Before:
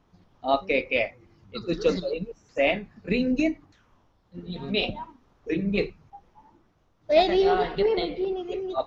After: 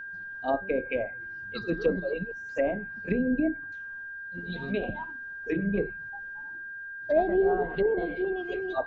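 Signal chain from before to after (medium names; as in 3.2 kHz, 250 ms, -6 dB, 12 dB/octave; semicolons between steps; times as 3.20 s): low-pass that closes with the level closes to 670 Hz, closed at -20 dBFS; whistle 1.6 kHz -35 dBFS; trim -2 dB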